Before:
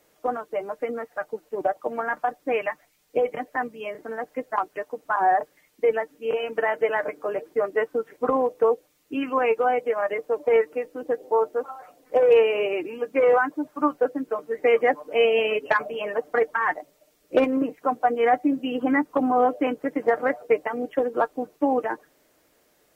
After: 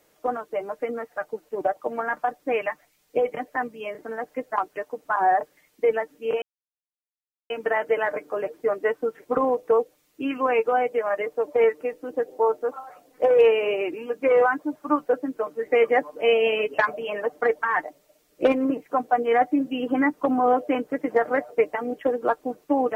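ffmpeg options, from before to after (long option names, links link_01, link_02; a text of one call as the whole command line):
ffmpeg -i in.wav -filter_complex "[0:a]asplit=2[link_01][link_02];[link_01]atrim=end=6.42,asetpts=PTS-STARTPTS,afade=type=out:start_time=6.416:duration=0.004:curve=hsin,apad=pad_dur=1.08[link_03];[link_02]atrim=start=6.42,asetpts=PTS-STARTPTS,afade=type=in:duration=0.004:curve=hsin[link_04];[link_03][link_04]concat=n=2:v=0:a=1" out.wav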